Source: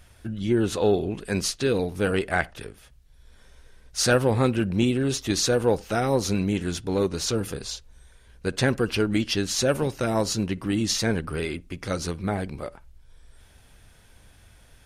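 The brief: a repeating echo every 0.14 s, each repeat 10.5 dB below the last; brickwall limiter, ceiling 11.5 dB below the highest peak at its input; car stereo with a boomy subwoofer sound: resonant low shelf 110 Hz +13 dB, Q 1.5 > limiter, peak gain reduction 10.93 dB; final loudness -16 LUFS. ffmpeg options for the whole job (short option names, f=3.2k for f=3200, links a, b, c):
-af "alimiter=limit=-18dB:level=0:latency=1,lowshelf=f=110:t=q:w=1.5:g=13,aecho=1:1:140|280|420:0.299|0.0896|0.0269,volume=16.5dB,alimiter=limit=-7dB:level=0:latency=1"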